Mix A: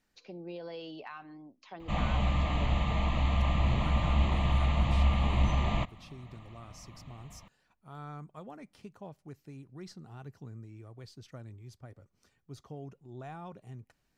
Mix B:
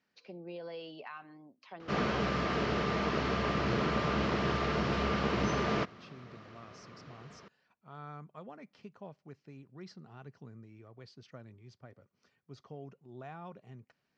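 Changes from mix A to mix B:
background: remove fixed phaser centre 1500 Hz, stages 6; master: add speaker cabinet 160–5200 Hz, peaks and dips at 310 Hz -5 dB, 810 Hz -3 dB, 3700 Hz -4 dB

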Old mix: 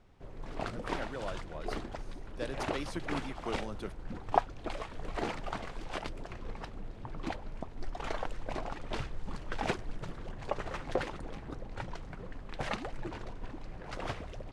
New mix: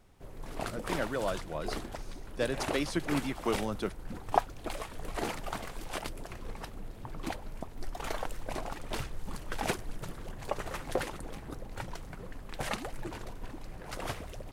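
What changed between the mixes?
speech +7.5 dB; background: remove air absorption 100 m

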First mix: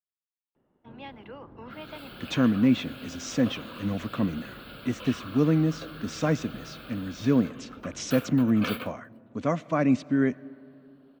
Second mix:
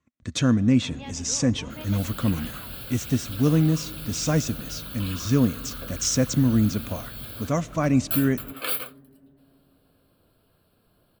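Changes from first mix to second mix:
speech: entry -1.95 s; master: remove three-band isolator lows -14 dB, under 160 Hz, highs -18 dB, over 3800 Hz

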